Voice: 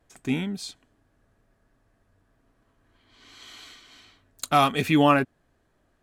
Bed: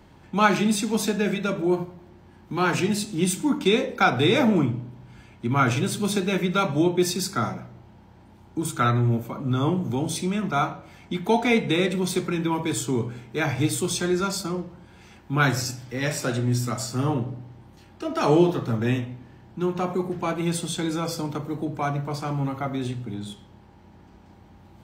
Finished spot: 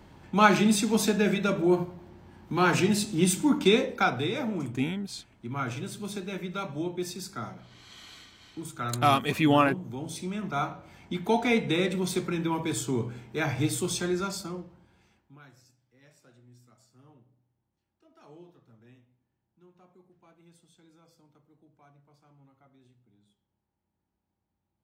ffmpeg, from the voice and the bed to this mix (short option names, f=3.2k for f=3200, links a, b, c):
-filter_complex "[0:a]adelay=4500,volume=-3dB[a];[1:a]volume=7dB,afade=t=out:st=3.66:d=0.66:silence=0.281838,afade=t=in:st=9.91:d=1.11:silence=0.421697,afade=t=out:st=13.93:d=1.47:silence=0.0354813[b];[a][b]amix=inputs=2:normalize=0"